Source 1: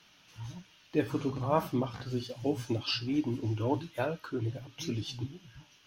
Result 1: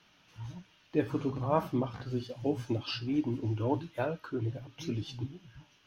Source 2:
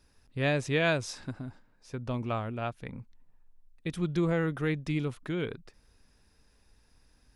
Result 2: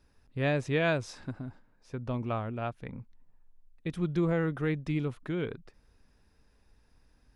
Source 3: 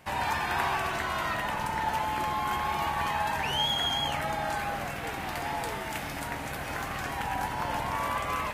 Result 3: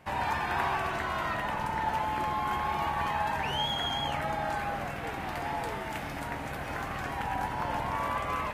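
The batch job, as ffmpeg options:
-af "highshelf=f=3.2k:g=-8.5"

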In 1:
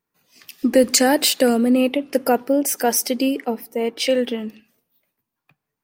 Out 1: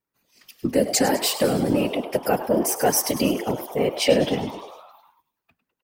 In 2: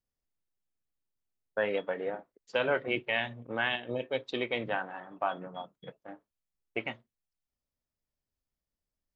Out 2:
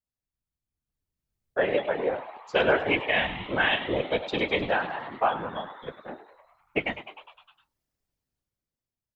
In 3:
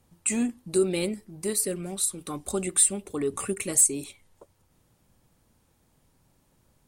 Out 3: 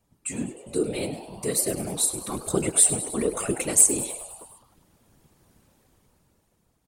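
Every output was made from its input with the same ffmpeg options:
-filter_complex "[0:a]dynaudnorm=f=290:g=9:m=14dB,asplit=8[a][b][c][d][e][f][g][h];[b]adelay=102,afreqshift=110,volume=-13dB[i];[c]adelay=204,afreqshift=220,volume=-16.9dB[j];[d]adelay=306,afreqshift=330,volume=-20.8dB[k];[e]adelay=408,afreqshift=440,volume=-24.6dB[l];[f]adelay=510,afreqshift=550,volume=-28.5dB[m];[g]adelay=612,afreqshift=660,volume=-32.4dB[n];[h]adelay=714,afreqshift=770,volume=-36.3dB[o];[a][i][j][k][l][m][n][o]amix=inputs=8:normalize=0,afftfilt=real='hypot(re,im)*cos(2*PI*random(0))':imag='hypot(re,im)*sin(2*PI*random(1))':win_size=512:overlap=0.75"

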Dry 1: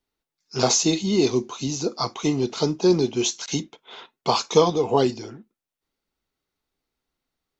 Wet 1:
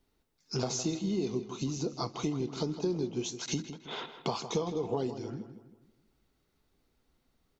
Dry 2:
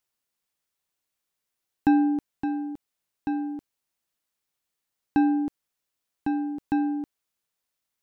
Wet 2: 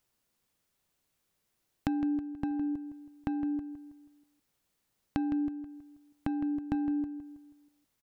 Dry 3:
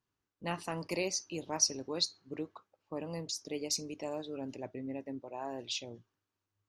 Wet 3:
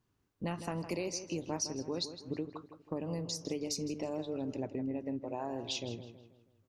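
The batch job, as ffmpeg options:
-filter_complex "[0:a]lowshelf=f=470:g=9,acompressor=threshold=-38dB:ratio=4,asplit=2[a][b];[b]adelay=161,lowpass=f=3.8k:p=1,volume=-10.5dB,asplit=2[c][d];[d]adelay=161,lowpass=f=3.8k:p=1,volume=0.43,asplit=2[e][f];[f]adelay=161,lowpass=f=3.8k:p=1,volume=0.43,asplit=2[g][h];[h]adelay=161,lowpass=f=3.8k:p=1,volume=0.43,asplit=2[i][j];[j]adelay=161,lowpass=f=3.8k:p=1,volume=0.43[k];[c][e][g][i][k]amix=inputs=5:normalize=0[l];[a][l]amix=inputs=2:normalize=0,volume=3.5dB"

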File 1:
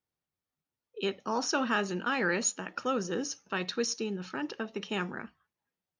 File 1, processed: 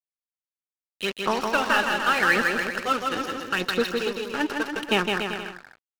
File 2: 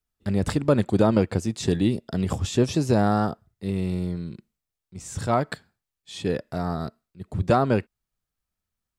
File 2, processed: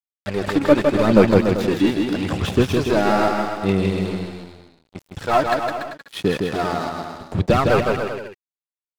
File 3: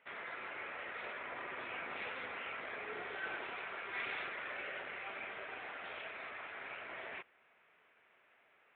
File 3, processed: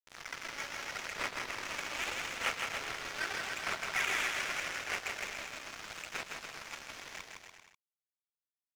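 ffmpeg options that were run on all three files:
-filter_complex "[0:a]aemphasis=mode=production:type=riaa,acrossover=split=2900[a][b];[b]acompressor=threshold=-38dB:ratio=4:attack=1:release=60[c];[a][c]amix=inputs=2:normalize=0,lowpass=3.9k,lowshelf=f=180:g=3.5,asoftclip=type=tanh:threshold=-19.5dB,aphaser=in_gain=1:out_gain=1:delay=3.6:decay=0.58:speed=0.81:type=sinusoidal,aeval=exprs='sgn(val(0))*max(abs(val(0))-0.0106,0)':c=same,aecho=1:1:160|288|390.4|472.3|537.9:0.631|0.398|0.251|0.158|0.1,volume=9dB"

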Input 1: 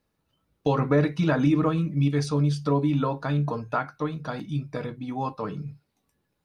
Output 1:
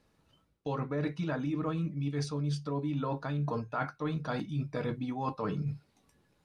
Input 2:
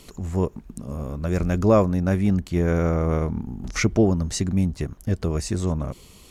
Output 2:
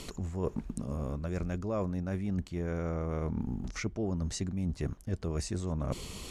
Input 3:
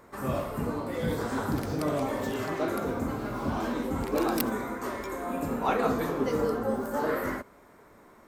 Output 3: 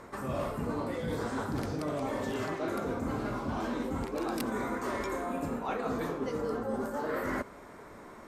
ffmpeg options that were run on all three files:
-af "lowpass=10k,areverse,acompressor=threshold=-36dB:ratio=12,areverse,volume=6dB"

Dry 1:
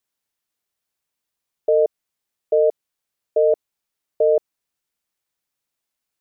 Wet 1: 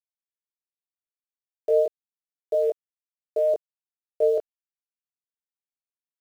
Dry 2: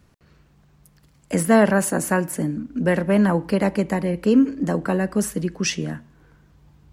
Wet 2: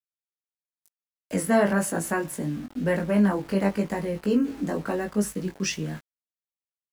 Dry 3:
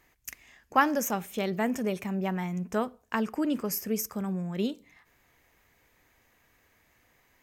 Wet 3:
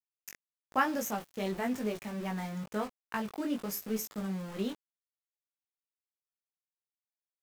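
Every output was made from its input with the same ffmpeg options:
-af "aeval=exprs='val(0)*gte(abs(val(0)),0.0158)':c=same,flanger=delay=18.5:depth=2.5:speed=1,volume=-2dB"

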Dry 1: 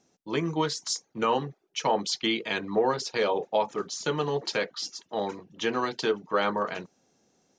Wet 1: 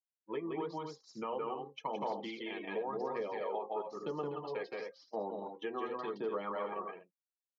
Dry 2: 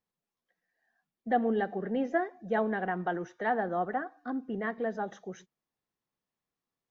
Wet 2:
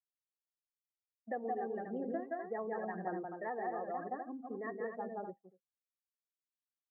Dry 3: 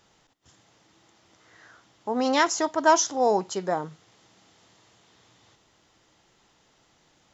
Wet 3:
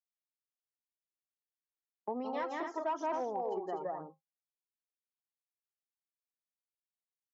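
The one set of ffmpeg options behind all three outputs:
-af "bandreject=f=1.5k:w=6.7,bandreject=f=266.6:t=h:w=4,bandreject=f=533.2:t=h:w=4,bandreject=f=799.8:t=h:w=4,bandreject=f=1.0664k:t=h:w=4,bandreject=f=1.333k:t=h:w=4,bandreject=f=1.5996k:t=h:w=4,bandreject=f=1.8662k:t=h:w=4,bandreject=f=2.1328k:t=h:w=4,bandreject=f=2.3994k:t=h:w=4,bandreject=f=2.666k:t=h:w=4,bandreject=f=2.9326k:t=h:w=4,bandreject=f=3.1992k:t=h:w=4,bandreject=f=3.4658k:t=h:w=4,afftdn=nr=26:nf=-37,aecho=1:1:169.1|247.8:0.794|0.447,agate=range=-33dB:threshold=-31dB:ratio=3:detection=peak,aphaser=in_gain=1:out_gain=1:delay=2.7:decay=0.46:speed=0.95:type=sinusoidal,volume=12dB,asoftclip=hard,volume=-12dB,acompressor=threshold=-39dB:ratio=2.5,highpass=210,lowpass=2k,volume=-1.5dB"

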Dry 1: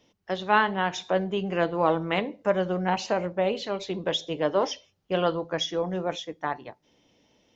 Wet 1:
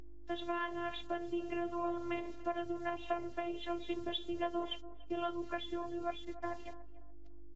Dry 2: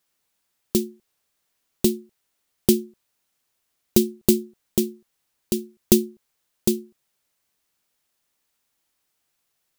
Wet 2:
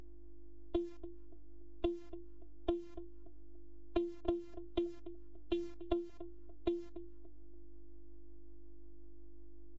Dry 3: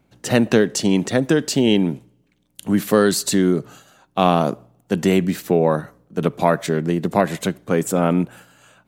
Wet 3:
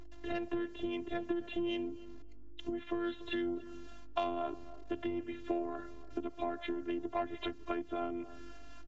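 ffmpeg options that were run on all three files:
-filter_complex "[0:a]acrossover=split=210|1500[a][b][c];[a]acontrast=78[d];[d][b][c]amix=inputs=3:normalize=0,acrossover=split=440[e][f];[e]aeval=exprs='val(0)*(1-0.7/2+0.7/2*cos(2*PI*3.7*n/s))':c=same[g];[f]aeval=exprs='val(0)*(1-0.7/2-0.7/2*cos(2*PI*3.7*n/s))':c=same[h];[g][h]amix=inputs=2:normalize=0,aresample=8000,aresample=44100,acrusher=bits=8:mix=0:aa=0.000001,asoftclip=type=tanh:threshold=-9.5dB,aeval=exprs='val(0)+0.00891*(sin(2*PI*50*n/s)+sin(2*PI*2*50*n/s)/2+sin(2*PI*3*50*n/s)/3+sin(2*PI*4*50*n/s)/4+sin(2*PI*5*50*n/s)/5)':c=same,acompressor=threshold=-27dB:ratio=10,equalizer=f=520:t=o:w=0.77:g=2.5,afftfilt=real='hypot(re,im)*cos(PI*b)':imag='0':win_size=512:overlap=0.75,asplit=2[i][j];[j]adelay=288,lowpass=f=1k:p=1,volume=-14dB,asplit=2[k][l];[l]adelay=288,lowpass=f=1k:p=1,volume=0.36,asplit=2[m][n];[n]adelay=288,lowpass=f=1k:p=1,volume=0.36[o];[i][k][m][o]amix=inputs=4:normalize=0,volume=-1.5dB" -ar 16000 -c:a libvorbis -b:a 48k

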